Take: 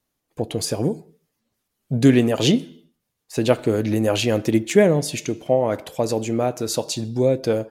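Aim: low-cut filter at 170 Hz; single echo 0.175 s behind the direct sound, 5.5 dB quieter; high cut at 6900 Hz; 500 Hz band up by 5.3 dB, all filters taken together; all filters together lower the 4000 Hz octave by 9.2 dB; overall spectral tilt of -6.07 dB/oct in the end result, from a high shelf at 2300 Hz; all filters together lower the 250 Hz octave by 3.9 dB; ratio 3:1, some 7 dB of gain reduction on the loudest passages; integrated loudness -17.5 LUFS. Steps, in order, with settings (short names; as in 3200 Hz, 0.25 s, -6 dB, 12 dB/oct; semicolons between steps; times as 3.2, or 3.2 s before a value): HPF 170 Hz; LPF 6900 Hz; bell 250 Hz -7 dB; bell 500 Hz +8.5 dB; high shelf 2300 Hz -4.5 dB; bell 4000 Hz -8 dB; compressor 3:1, threshold -15 dBFS; echo 0.175 s -5.5 dB; gain +3.5 dB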